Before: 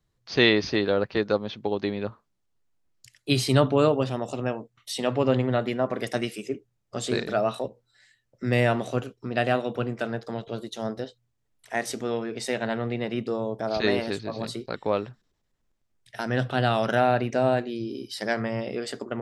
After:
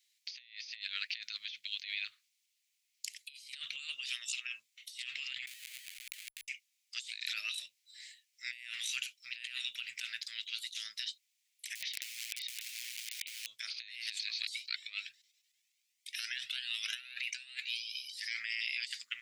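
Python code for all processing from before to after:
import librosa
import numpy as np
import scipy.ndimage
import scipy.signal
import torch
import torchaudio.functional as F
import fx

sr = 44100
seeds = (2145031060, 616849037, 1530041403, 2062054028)

y = fx.chain(x, sr, fx.highpass(hz=330.0, slope=24),
    fx.high_shelf(hz=10000.0, db=-5.0), at=(4.1, 4.55))
y = fx.chain(y, sr, fx.peak_eq(hz=700.0, db=11.5, octaves=1.8),
    fx.schmitt(flips_db=-26.5),
    fx.resample_bad(factor=4, down='filtered', up='hold'), at=(5.47, 6.48))
y = fx.chain(y, sr, fx.ellip_bandpass(low_hz=150.0, high_hz=3700.0, order=3, stop_db=40),
    fx.overflow_wrap(gain_db=29.5), at=(11.75, 13.46))
y = fx.chain(y, sr, fx.over_compress(threshold_db=-27.0, ratio=-0.5),
    fx.comb_cascade(direction='rising', hz=1.3), at=(14.46, 18.4))
y = scipy.signal.sosfilt(scipy.signal.ellip(4, 1.0, 60, 2200.0, 'highpass', fs=sr, output='sos'), y)
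y = fx.over_compress(y, sr, threshold_db=-48.0, ratio=-1.0)
y = y * 10.0 ** (4.0 / 20.0)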